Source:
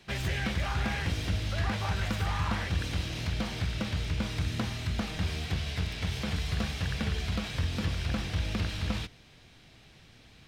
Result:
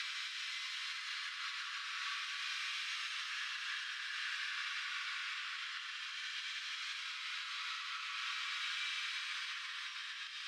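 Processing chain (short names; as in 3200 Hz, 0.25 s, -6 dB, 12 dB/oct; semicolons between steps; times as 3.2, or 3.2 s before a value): Paulstretch 8×, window 0.25 s, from 6.39; compressor, threshold -30 dBFS, peak gain reduction 8 dB; steep high-pass 1100 Hz 72 dB/oct; air absorption 68 m; gain +2 dB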